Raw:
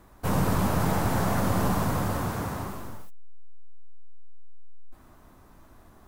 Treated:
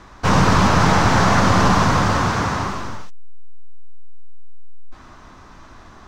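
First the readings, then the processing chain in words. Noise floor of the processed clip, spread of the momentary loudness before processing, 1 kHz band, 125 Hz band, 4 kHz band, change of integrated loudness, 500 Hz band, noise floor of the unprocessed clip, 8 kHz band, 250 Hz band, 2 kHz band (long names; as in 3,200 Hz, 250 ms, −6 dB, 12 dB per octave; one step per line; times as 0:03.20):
−44 dBFS, 11 LU, +13.5 dB, +9.0 dB, +15.5 dB, +11.0 dB, +9.0 dB, −54 dBFS, +10.0 dB, +9.0 dB, +15.5 dB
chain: drawn EQ curve 650 Hz 0 dB, 1,100 Hz +6 dB, 6,000 Hz +7 dB, 12,000 Hz −20 dB
level +9 dB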